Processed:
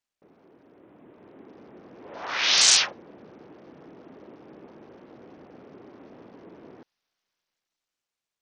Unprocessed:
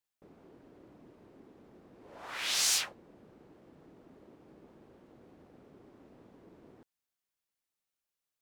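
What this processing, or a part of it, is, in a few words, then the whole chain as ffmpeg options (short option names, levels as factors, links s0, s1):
Bluetooth headset: -af "highpass=f=210:p=1,dynaudnorm=f=210:g=11:m=3.16,aresample=16000,aresample=44100,volume=1.19" -ar 48000 -c:a sbc -b:a 64k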